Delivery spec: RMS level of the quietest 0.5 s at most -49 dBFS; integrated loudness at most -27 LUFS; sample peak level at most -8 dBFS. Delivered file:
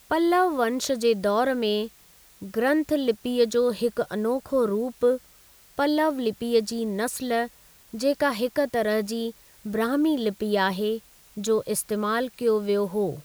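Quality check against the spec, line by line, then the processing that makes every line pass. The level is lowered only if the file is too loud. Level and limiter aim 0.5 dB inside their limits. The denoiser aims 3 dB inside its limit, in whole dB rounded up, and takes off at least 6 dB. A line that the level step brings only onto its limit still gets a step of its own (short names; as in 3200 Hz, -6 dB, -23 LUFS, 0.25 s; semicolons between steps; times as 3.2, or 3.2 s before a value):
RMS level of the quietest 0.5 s -54 dBFS: OK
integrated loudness -25.0 LUFS: fail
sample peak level -10.0 dBFS: OK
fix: gain -2.5 dB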